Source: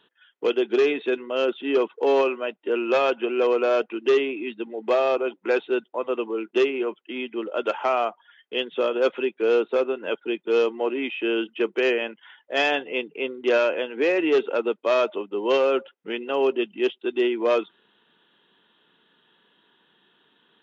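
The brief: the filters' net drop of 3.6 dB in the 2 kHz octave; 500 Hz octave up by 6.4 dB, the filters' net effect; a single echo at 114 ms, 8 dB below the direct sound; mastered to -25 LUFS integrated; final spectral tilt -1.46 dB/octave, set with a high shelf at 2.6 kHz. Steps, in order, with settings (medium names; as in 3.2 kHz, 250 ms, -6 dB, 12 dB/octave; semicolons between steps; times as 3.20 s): peaking EQ 500 Hz +8 dB; peaking EQ 2 kHz -8.5 dB; treble shelf 2.6 kHz +4.5 dB; delay 114 ms -8 dB; trim -7 dB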